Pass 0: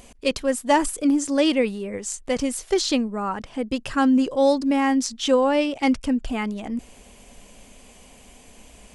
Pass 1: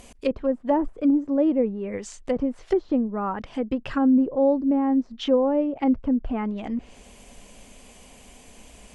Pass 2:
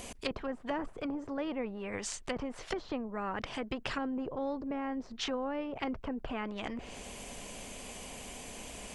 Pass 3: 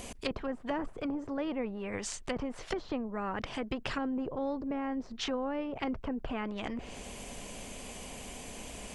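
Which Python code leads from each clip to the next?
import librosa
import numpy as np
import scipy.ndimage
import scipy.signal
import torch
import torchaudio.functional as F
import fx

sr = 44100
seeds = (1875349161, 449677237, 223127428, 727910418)

y1 = fx.env_lowpass_down(x, sr, base_hz=640.0, full_db=-19.5)
y2 = fx.spectral_comp(y1, sr, ratio=2.0)
y2 = y2 * librosa.db_to_amplitude(-8.5)
y3 = fx.low_shelf(y2, sr, hz=380.0, db=3.0)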